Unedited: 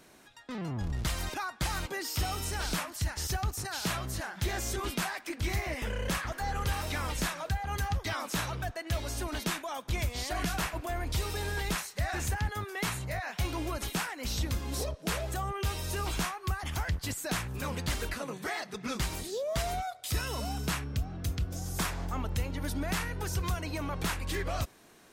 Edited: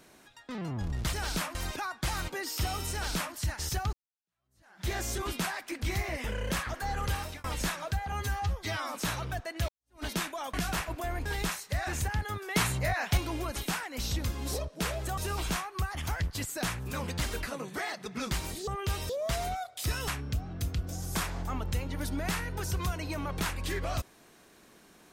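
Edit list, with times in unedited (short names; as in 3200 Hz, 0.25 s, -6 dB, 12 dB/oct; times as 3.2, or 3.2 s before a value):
2.5–2.92 copy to 1.13
3.51–4.46 fade in exponential
6.63–7.02 fade out equal-power
7.7–8.25 stretch 1.5×
8.99–9.34 fade in exponential
9.84–10.39 cut
11.11–11.52 cut
12.82–13.44 gain +5.5 dB
15.44–15.86 move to 19.36
20.34–20.71 cut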